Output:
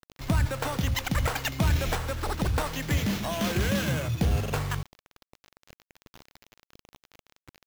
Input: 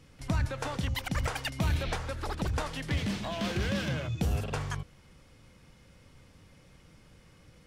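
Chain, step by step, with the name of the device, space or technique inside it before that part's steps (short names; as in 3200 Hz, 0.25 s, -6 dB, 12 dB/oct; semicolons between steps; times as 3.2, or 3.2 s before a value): early 8-bit sampler (sample-rate reducer 9300 Hz, jitter 0%; bit-crush 8-bit); gain +4.5 dB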